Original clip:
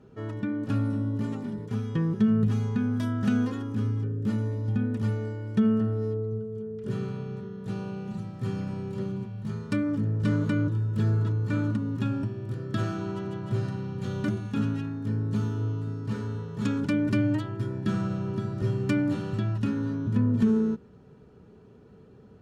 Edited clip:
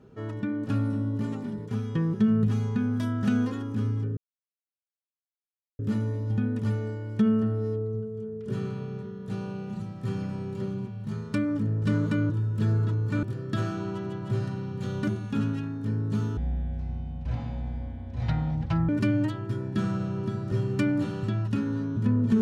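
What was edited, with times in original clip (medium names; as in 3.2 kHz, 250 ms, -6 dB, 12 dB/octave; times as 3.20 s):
4.17 s: insert silence 1.62 s
11.61–12.44 s: delete
15.58–16.99 s: speed 56%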